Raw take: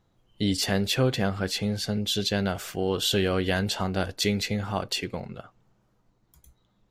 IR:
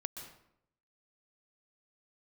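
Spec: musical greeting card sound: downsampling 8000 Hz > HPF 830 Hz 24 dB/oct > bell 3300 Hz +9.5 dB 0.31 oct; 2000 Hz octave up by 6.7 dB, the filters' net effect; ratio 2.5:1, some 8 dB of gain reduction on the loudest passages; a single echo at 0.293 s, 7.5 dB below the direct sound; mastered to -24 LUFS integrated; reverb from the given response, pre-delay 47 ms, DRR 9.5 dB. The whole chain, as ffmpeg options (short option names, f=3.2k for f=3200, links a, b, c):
-filter_complex "[0:a]equalizer=f=2k:t=o:g=8,acompressor=threshold=-31dB:ratio=2.5,aecho=1:1:293:0.422,asplit=2[a][b];[1:a]atrim=start_sample=2205,adelay=47[c];[b][c]afir=irnorm=-1:irlink=0,volume=-8.5dB[d];[a][d]amix=inputs=2:normalize=0,aresample=8000,aresample=44100,highpass=f=830:w=0.5412,highpass=f=830:w=1.3066,equalizer=f=3.3k:t=o:w=0.31:g=9.5,volume=6dB"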